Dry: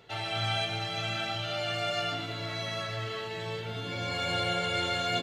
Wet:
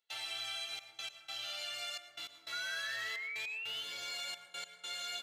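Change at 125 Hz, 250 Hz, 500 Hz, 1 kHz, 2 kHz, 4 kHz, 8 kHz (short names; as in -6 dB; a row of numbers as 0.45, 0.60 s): under -30 dB, under -25 dB, -21.0 dB, -16.0 dB, -6.0 dB, -6.5 dB, -1.0 dB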